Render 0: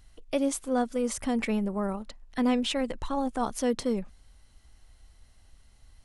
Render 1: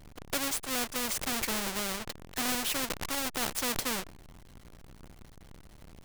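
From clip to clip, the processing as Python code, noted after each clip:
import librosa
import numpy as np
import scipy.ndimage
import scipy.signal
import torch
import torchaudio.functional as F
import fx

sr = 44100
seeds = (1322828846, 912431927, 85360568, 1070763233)

y = fx.halfwave_hold(x, sr)
y = fx.spectral_comp(y, sr, ratio=2.0)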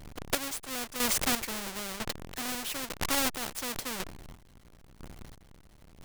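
y = fx.chopper(x, sr, hz=1.0, depth_pct=65, duty_pct=35)
y = F.gain(torch.from_numpy(y), 5.0).numpy()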